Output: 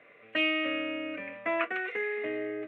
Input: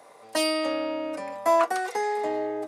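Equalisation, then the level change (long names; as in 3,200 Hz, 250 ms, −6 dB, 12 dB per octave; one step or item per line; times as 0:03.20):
transistor ladder low-pass 2,900 Hz, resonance 55%
phaser with its sweep stopped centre 2,100 Hz, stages 4
+8.5 dB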